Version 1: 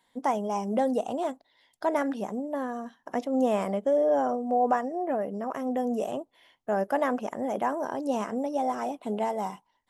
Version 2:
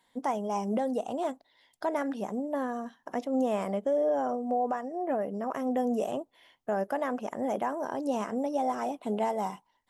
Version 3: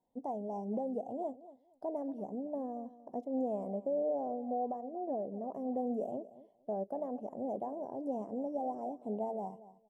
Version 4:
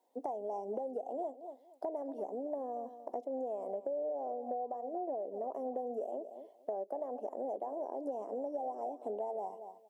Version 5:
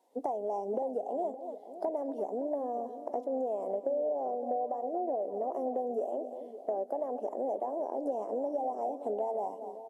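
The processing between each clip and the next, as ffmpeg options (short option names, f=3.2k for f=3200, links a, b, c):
-af "alimiter=limit=-20dB:level=0:latency=1:release=464"
-af "firequalizer=gain_entry='entry(740,0);entry(1400,-30);entry(7100,-18)':delay=0.05:min_phase=1,aecho=1:1:233|466:0.15|0.0284,volume=-6.5dB"
-af "highpass=f=340:w=0.5412,highpass=f=340:w=1.3066,acompressor=threshold=-44dB:ratio=6,volume=8.5dB"
-filter_complex "[0:a]asplit=2[a][b];[b]adelay=566,lowpass=f=1.2k:p=1,volume=-12dB,asplit=2[c][d];[d]adelay=566,lowpass=f=1.2k:p=1,volume=0.33,asplit=2[e][f];[f]adelay=566,lowpass=f=1.2k:p=1,volume=0.33[g];[a][c][e][g]amix=inputs=4:normalize=0,volume=5dB" -ar 32000 -c:a libvorbis -b:a 48k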